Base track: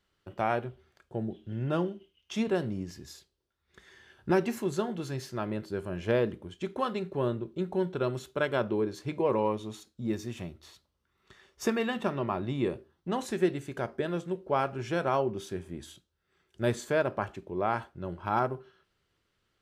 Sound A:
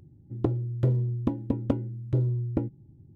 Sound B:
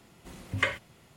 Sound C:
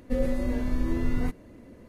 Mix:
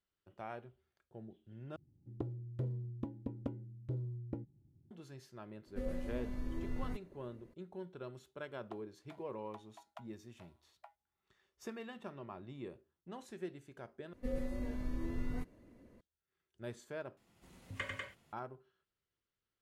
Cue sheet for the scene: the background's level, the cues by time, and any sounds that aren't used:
base track −17 dB
0:01.76: overwrite with A −14.5 dB
0:05.66: mix in C −13.5 dB
0:08.27: mix in A −10 dB + linear-phase brick-wall high-pass 620 Hz
0:14.13: overwrite with C −12 dB
0:17.17: overwrite with B −15 dB + loudspeakers that aren't time-aligned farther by 33 metres −4 dB, 67 metres −3 dB

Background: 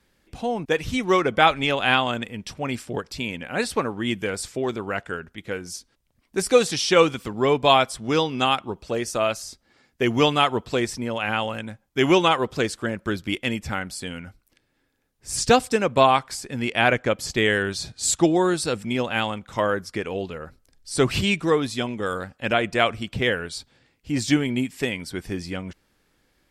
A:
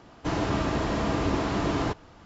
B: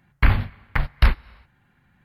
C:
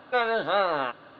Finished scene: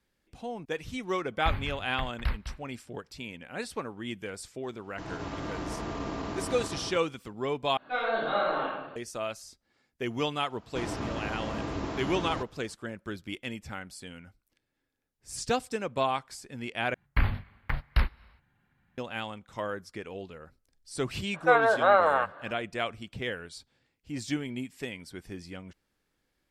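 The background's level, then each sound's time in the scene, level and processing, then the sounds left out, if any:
background −11.5 dB
0:01.23: mix in B −14 dB + single-tap delay 204 ms −10.5 dB
0:04.73: mix in A −13.5 dB + feedback delay that plays each chunk backwards 115 ms, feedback 76%, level −0.5 dB
0:07.77: overwrite with C −13 dB + rectangular room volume 330 cubic metres, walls mixed, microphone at 3.3 metres
0:10.50: mix in A −8 dB
0:16.94: overwrite with B −8.5 dB
0:21.34: mix in C −8 dB + flat-topped bell 970 Hz +11.5 dB 2.5 octaves

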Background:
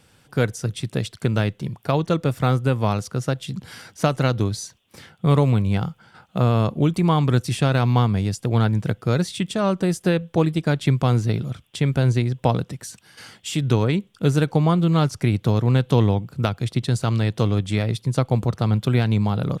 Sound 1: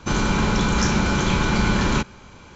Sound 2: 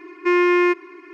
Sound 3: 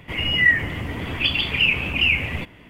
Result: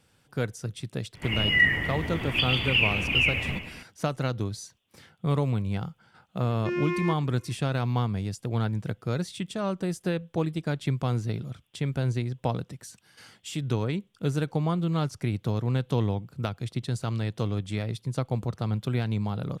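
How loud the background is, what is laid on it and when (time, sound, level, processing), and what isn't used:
background −8.5 dB
0:01.14: mix in 3 −4.5 dB + repeating echo 109 ms, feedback 57%, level −11 dB
0:06.40: mix in 2 −11.5 dB + phaser whose notches keep moving one way falling 1.9 Hz
not used: 1

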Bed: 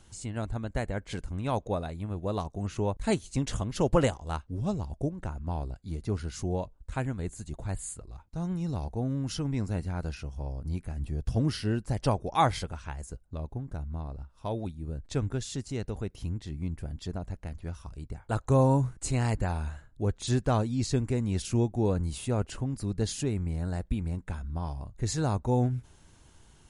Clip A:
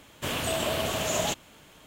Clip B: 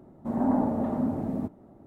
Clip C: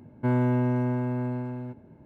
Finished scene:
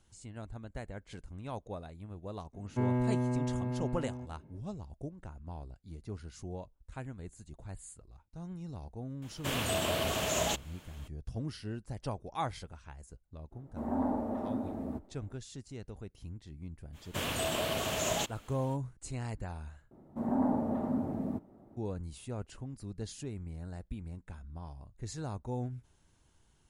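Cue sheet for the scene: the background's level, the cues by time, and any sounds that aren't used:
bed −11 dB
0:02.53: mix in C −6.5 dB + notch filter 1,500 Hz, Q 16
0:09.22: mix in A −3.5 dB
0:13.51: mix in B −5.5 dB, fades 0.02 s + parametric band 150 Hz −12 dB 0.71 octaves
0:16.92: mix in A −4.5 dB, fades 0.05 s
0:19.91: overwrite with B −5 dB

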